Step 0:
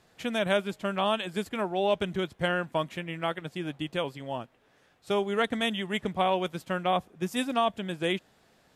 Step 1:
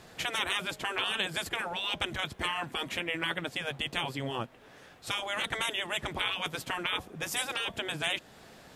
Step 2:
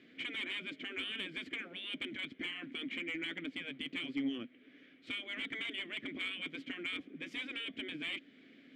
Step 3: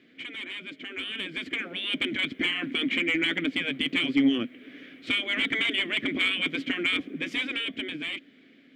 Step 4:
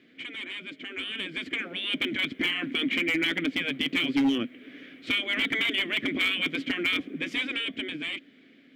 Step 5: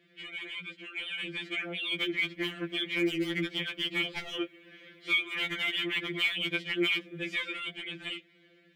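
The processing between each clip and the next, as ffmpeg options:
ffmpeg -i in.wav -filter_complex "[0:a]afftfilt=real='re*lt(hypot(re,im),0.0794)':imag='im*lt(hypot(re,im),0.0794)':win_size=1024:overlap=0.75,asplit=2[link_01][link_02];[link_02]acompressor=threshold=-46dB:ratio=6,volume=0dB[link_03];[link_01][link_03]amix=inputs=2:normalize=0,volume=4.5dB" out.wav
ffmpeg -i in.wav -filter_complex "[0:a]asplit=3[link_01][link_02][link_03];[link_01]bandpass=frequency=270:width_type=q:width=8,volume=0dB[link_04];[link_02]bandpass=frequency=2290:width_type=q:width=8,volume=-6dB[link_05];[link_03]bandpass=frequency=3010:width_type=q:width=8,volume=-9dB[link_06];[link_04][link_05][link_06]amix=inputs=3:normalize=0,asplit=2[link_07][link_08];[link_08]highpass=frequency=720:poles=1,volume=13dB,asoftclip=type=tanh:threshold=-27.5dB[link_09];[link_07][link_09]amix=inputs=2:normalize=0,lowpass=frequency=1000:poles=1,volume=-6dB,volume=6.5dB" out.wav
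ffmpeg -i in.wav -af "dynaudnorm=framelen=280:gausssize=11:maxgain=12dB,volume=2dB" out.wav
ffmpeg -i in.wav -af "asoftclip=type=hard:threshold=-19.5dB" out.wav
ffmpeg -i in.wav -af "afftfilt=real='re*2.83*eq(mod(b,8),0)':imag='im*2.83*eq(mod(b,8),0)':win_size=2048:overlap=0.75,volume=-1dB" out.wav

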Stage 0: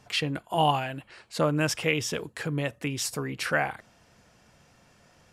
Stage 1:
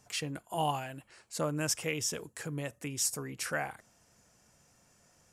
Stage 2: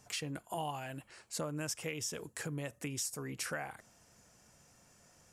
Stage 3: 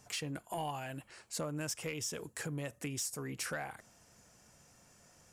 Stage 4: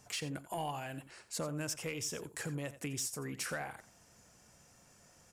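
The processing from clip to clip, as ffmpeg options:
ffmpeg -i in.wav -af "highshelf=frequency=5100:width_type=q:width=1.5:gain=8.5,volume=-8dB" out.wav
ffmpeg -i in.wav -af "acompressor=threshold=-38dB:ratio=4,volume=1.5dB" out.wav
ffmpeg -i in.wav -af "asoftclip=type=tanh:threshold=-29dB,volume=1dB" out.wav
ffmpeg -i in.wav -af "aecho=1:1:87:0.188" out.wav

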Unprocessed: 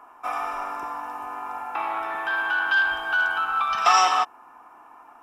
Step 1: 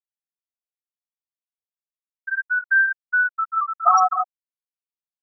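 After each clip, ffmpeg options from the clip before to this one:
ffmpeg -i in.wav -af "afftfilt=real='re*gte(hypot(re,im),0.562)':imag='im*gte(hypot(re,im),0.562)':win_size=1024:overlap=0.75,volume=4dB" out.wav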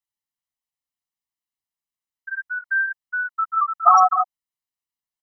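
ffmpeg -i in.wav -af "aecho=1:1:1:0.59,volume=1.5dB" out.wav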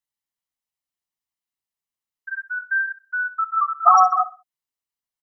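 ffmpeg -i in.wav -af "aecho=1:1:64|128|192:0.158|0.0475|0.0143" out.wav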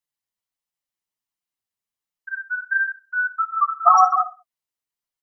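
ffmpeg -i in.wav -af "flanger=delay=5.6:depth=4.6:regen=36:speed=1.4:shape=sinusoidal,volume=4dB" out.wav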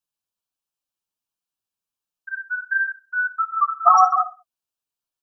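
ffmpeg -i in.wav -af "asuperstop=centerf=2000:order=4:qfactor=3.6" out.wav

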